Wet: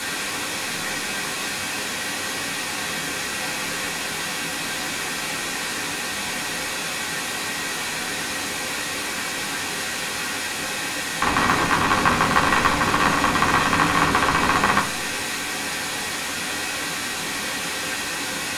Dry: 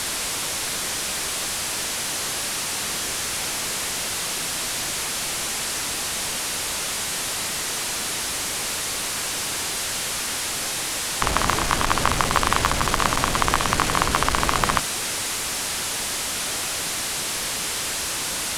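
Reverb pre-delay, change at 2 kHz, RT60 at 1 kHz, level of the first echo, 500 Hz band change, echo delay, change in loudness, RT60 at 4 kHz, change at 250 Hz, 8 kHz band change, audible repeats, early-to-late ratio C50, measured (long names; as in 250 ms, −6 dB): 3 ms, +5.0 dB, 0.40 s, no echo audible, +2.0 dB, no echo audible, +0.5 dB, 0.55 s, +5.0 dB, −4.5 dB, no echo audible, 11.5 dB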